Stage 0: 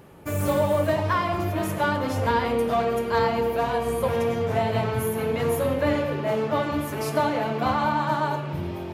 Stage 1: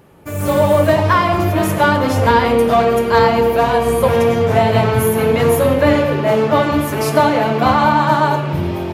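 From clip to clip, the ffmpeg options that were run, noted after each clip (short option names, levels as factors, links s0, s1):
-af "dynaudnorm=f=330:g=3:m=3.76,volume=1.12"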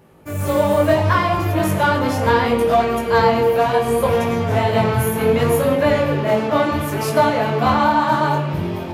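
-af "flanger=delay=18:depth=6.2:speed=0.69"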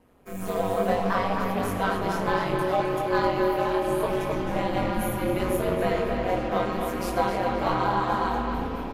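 -filter_complex "[0:a]aeval=exprs='val(0)*sin(2*PI*93*n/s)':c=same,asplit=2[s0][s1];[s1]adelay=262,lowpass=f=4500:p=1,volume=0.562,asplit=2[s2][s3];[s3]adelay=262,lowpass=f=4500:p=1,volume=0.5,asplit=2[s4][s5];[s5]adelay=262,lowpass=f=4500:p=1,volume=0.5,asplit=2[s6][s7];[s7]adelay=262,lowpass=f=4500:p=1,volume=0.5,asplit=2[s8][s9];[s9]adelay=262,lowpass=f=4500:p=1,volume=0.5,asplit=2[s10][s11];[s11]adelay=262,lowpass=f=4500:p=1,volume=0.5[s12];[s0][s2][s4][s6][s8][s10][s12]amix=inputs=7:normalize=0,volume=0.447"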